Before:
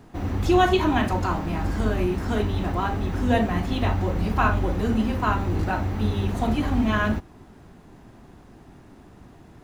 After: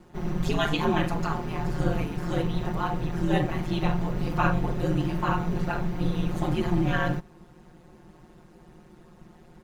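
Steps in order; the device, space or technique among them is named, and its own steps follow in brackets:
ring-modulated robot voice (ring modulation 80 Hz; comb filter 5.6 ms, depth 89%)
level −3 dB

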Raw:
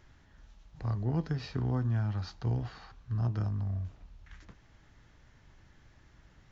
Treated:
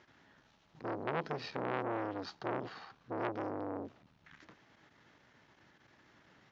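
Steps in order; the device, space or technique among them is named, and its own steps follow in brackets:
public-address speaker with an overloaded transformer (saturating transformer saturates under 1,200 Hz; band-pass filter 230–5,000 Hz)
level +3 dB

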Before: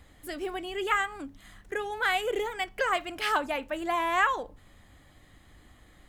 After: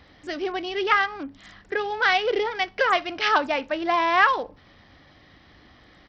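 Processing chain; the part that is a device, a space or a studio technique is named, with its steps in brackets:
Bluetooth headset (high-pass filter 140 Hz 6 dB per octave; downsampling to 16,000 Hz; level +6.5 dB; SBC 64 kbit/s 44,100 Hz)

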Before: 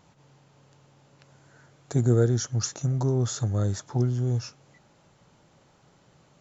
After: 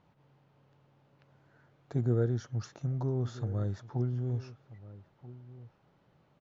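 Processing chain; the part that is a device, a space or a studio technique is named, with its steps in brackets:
shout across a valley (high-frequency loss of the air 240 metres; slap from a distant wall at 220 metres, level −17 dB)
level −7 dB

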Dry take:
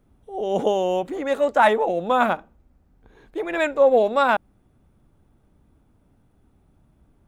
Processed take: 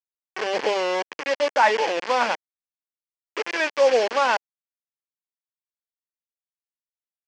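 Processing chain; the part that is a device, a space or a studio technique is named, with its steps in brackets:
hand-held game console (bit reduction 4 bits; loudspeaker in its box 490–5,000 Hz, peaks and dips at 680 Hz −8 dB, 1,300 Hz −8 dB, 3,800 Hz −10 dB)
level +2.5 dB

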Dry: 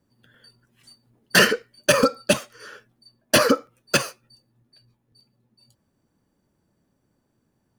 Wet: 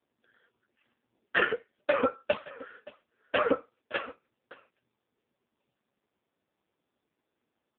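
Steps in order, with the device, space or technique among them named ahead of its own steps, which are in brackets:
satellite phone (band-pass filter 340–3,200 Hz; single-tap delay 570 ms −19 dB; level −3.5 dB; AMR narrowband 5.15 kbit/s 8,000 Hz)

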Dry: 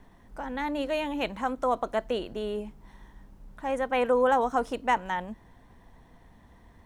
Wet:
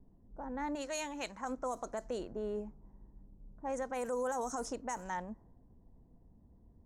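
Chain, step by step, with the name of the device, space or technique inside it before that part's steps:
low-pass that shuts in the quiet parts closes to 360 Hz, open at −21.5 dBFS
0:00.75–0:01.45: tilt shelving filter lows −7.5 dB, about 1,100 Hz
over-bright horn tweeter (high shelf with overshoot 4,600 Hz +13.5 dB, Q 3; brickwall limiter −23 dBFS, peak gain reduction 11 dB)
level −5.5 dB

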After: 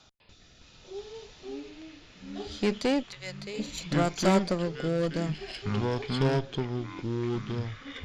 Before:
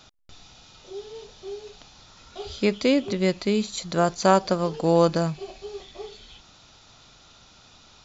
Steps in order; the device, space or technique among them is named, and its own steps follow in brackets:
0:03.02–0:03.58: high-pass filter 1,100 Hz → 460 Hz 24 dB per octave
overdriven rotary cabinet (tube saturation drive 19 dB, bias 0.6; rotating-speaker cabinet horn 0.65 Hz)
delay with pitch and tempo change per echo 200 ms, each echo −6 semitones, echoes 3

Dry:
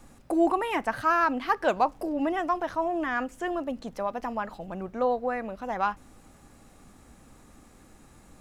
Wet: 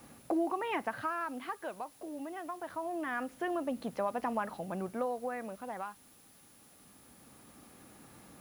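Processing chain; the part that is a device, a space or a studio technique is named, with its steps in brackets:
medium wave at night (band-pass filter 110–3,700 Hz; downward compressor, threshold −28 dBFS, peak gain reduction 10.5 dB; amplitude tremolo 0.24 Hz, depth 70%; steady tone 10,000 Hz −63 dBFS; white noise bed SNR 25 dB)

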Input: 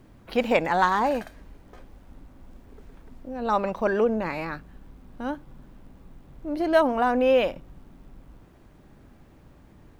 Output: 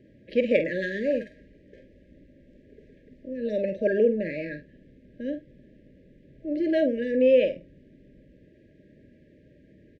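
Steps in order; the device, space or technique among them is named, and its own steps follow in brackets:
through cloth (low-pass filter 6,800 Hz 12 dB per octave; high-shelf EQ 3,400 Hz −18 dB)
brick-wall band-stop 640–1,600 Hz
high-pass filter 240 Hz 6 dB per octave
double-tracking delay 47 ms −9.5 dB
level +2.5 dB

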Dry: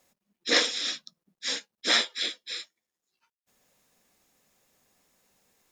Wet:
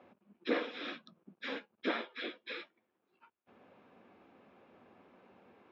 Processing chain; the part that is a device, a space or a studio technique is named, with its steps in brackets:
bass amplifier (downward compressor 6 to 1, threshold −39 dBFS, peak gain reduction 20 dB; loudspeaker in its box 90–2,300 Hz, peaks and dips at 140 Hz −9 dB, 250 Hz +3 dB, 360 Hz +5 dB, 1,900 Hz −10 dB)
level +11.5 dB

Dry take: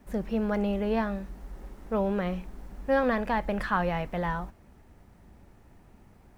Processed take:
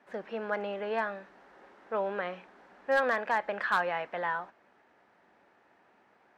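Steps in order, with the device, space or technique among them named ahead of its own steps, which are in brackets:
megaphone (band-pass filter 510–3,500 Hz; parametric band 1,600 Hz +5 dB 0.37 octaves; hard clipping −18.5 dBFS, distortion −20 dB)

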